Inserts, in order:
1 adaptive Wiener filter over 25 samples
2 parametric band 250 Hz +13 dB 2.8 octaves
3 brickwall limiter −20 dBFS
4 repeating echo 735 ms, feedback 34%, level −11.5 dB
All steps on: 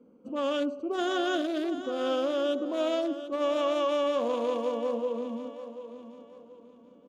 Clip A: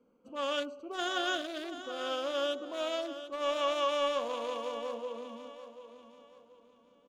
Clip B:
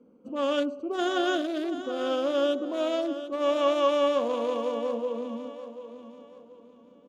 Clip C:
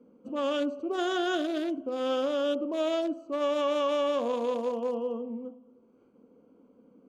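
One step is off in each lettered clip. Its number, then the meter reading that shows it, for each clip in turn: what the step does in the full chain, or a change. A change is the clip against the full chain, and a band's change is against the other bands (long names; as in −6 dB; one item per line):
2, 250 Hz band −10.5 dB
3, change in crest factor +2.5 dB
4, change in momentary loudness spread −7 LU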